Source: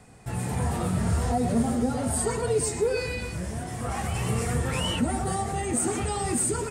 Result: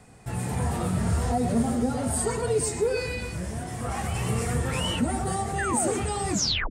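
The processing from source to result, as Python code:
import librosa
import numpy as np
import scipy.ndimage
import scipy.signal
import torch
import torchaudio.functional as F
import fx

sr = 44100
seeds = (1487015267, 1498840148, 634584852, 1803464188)

y = fx.tape_stop_end(x, sr, length_s=0.41)
y = fx.spec_paint(y, sr, seeds[0], shape='fall', start_s=5.58, length_s=0.4, low_hz=370.0, high_hz=1900.0, level_db=-30.0)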